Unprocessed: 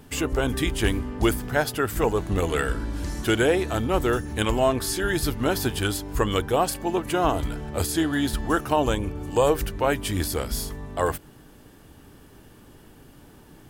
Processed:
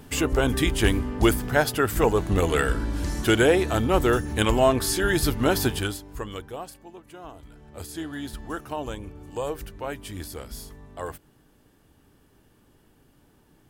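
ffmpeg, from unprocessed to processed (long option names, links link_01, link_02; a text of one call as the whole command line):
ffmpeg -i in.wav -af "volume=12dB,afade=type=out:start_time=5.65:duration=0.35:silence=0.281838,afade=type=out:start_time=6:duration=0.92:silence=0.281838,afade=type=in:start_time=7.44:duration=0.6:silence=0.316228" out.wav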